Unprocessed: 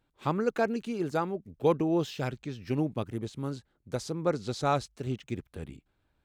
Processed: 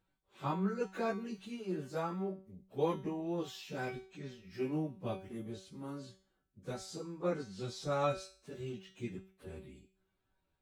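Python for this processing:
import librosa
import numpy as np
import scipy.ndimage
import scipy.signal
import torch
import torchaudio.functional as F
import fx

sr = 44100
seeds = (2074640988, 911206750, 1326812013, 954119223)

y = fx.comb_fb(x, sr, f0_hz=190.0, decay_s=0.26, harmonics='all', damping=0.0, mix_pct=80)
y = fx.stretch_vocoder_free(y, sr, factor=1.7)
y = F.gain(torch.from_numpy(y), 5.0).numpy()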